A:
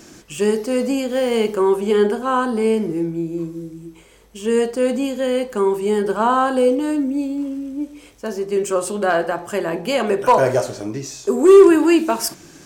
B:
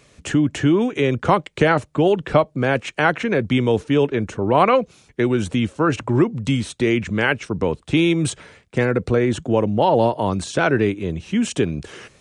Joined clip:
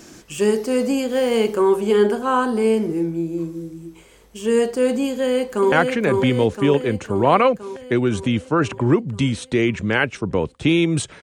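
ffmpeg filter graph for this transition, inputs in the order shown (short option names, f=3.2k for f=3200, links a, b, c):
-filter_complex "[0:a]apad=whole_dur=11.22,atrim=end=11.22,atrim=end=5.722[a];[1:a]atrim=start=2.998:end=8.5[b];[a][b]acrossfade=d=0.004:c1=hsin:c2=hsin,asplit=2[c][d];[d]afade=t=in:st=5.11:d=0.01,afade=t=out:st=5.72:d=0.01,aecho=0:1:510|1020|1530|2040|2550|3060|3570|4080|4590|5100:0.668344|0.434424|0.282375|0.183544|0.119304|0.0775473|0.0504058|0.0327637|0.0212964|0.0138427[e];[c][e]amix=inputs=2:normalize=0"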